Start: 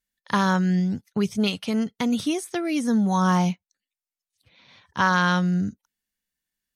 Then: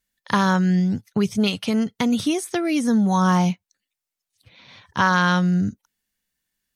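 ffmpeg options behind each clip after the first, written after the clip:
-filter_complex "[0:a]equalizer=f=110:t=o:w=0.48:g=4.5,asplit=2[a][b];[b]acompressor=threshold=-29dB:ratio=6,volume=0dB[c];[a][c]amix=inputs=2:normalize=0"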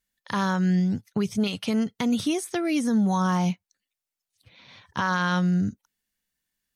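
-af "alimiter=limit=-12.5dB:level=0:latency=1:release=70,volume=-3dB"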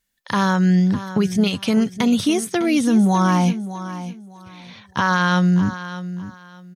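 -af "aecho=1:1:605|1210|1815:0.224|0.0537|0.0129,volume=6.5dB"

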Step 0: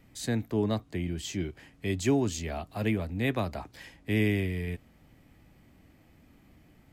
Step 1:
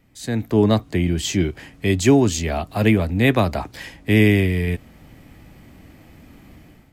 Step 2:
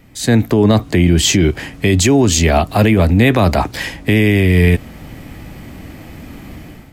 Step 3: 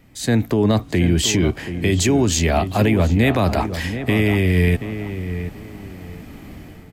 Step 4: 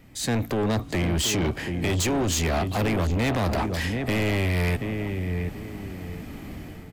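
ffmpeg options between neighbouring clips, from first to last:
-af "dynaudnorm=f=160:g=5:m=13dB"
-af "alimiter=level_in=14.5dB:limit=-1dB:release=50:level=0:latency=1,volume=-2dB"
-filter_complex "[0:a]asplit=2[a][b];[b]adelay=730,lowpass=f=1.9k:p=1,volume=-10dB,asplit=2[c][d];[d]adelay=730,lowpass=f=1.9k:p=1,volume=0.31,asplit=2[e][f];[f]adelay=730,lowpass=f=1.9k:p=1,volume=0.31[g];[a][c][e][g]amix=inputs=4:normalize=0,volume=-5.5dB"
-af "asoftclip=type=tanh:threshold=-21dB"

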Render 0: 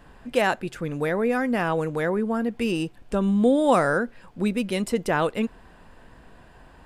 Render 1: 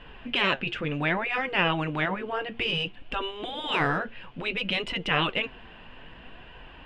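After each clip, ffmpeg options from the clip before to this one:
-af "flanger=delay=2:depth=7:regen=64:speed=0.61:shape=sinusoidal,lowpass=f=2.9k:t=q:w=5.1,afftfilt=real='re*lt(hypot(re,im),0.2)':imag='im*lt(hypot(re,im),0.2)':win_size=1024:overlap=0.75,volume=5.5dB"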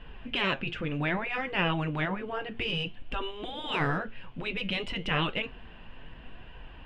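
-af "lowshelf=f=180:g=8.5,flanger=delay=4.4:depth=5.8:regen=-83:speed=0.53:shape=triangular"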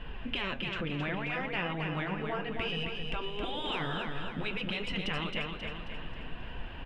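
-filter_complex "[0:a]acompressor=threshold=-37dB:ratio=6,asplit=2[a][b];[b]aecho=0:1:268|536|804|1072|1340|1608:0.562|0.281|0.141|0.0703|0.0351|0.0176[c];[a][c]amix=inputs=2:normalize=0,volume=4.5dB"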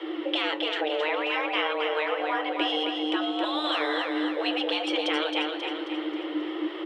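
-af "afreqshift=300,volume=6.5dB"

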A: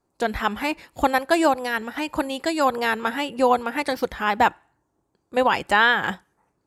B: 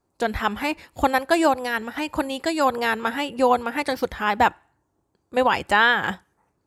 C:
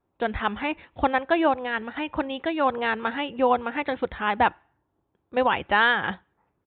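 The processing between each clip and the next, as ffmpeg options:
-af "equalizer=f=82:w=2.5:g=6.5"
-af "aresample=8000,aresample=44100,volume=-2.5dB"

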